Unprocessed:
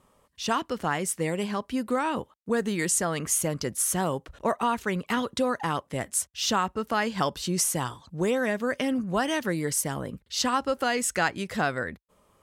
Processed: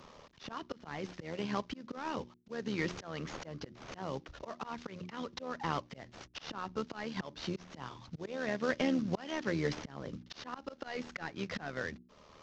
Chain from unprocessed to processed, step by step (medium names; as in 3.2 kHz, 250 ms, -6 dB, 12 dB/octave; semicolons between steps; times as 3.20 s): CVSD coder 32 kbps; hum notches 60/120/180/240/300/360 Hz; AM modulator 77 Hz, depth 40%; slow attack 512 ms; three bands compressed up and down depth 40%; trim +2 dB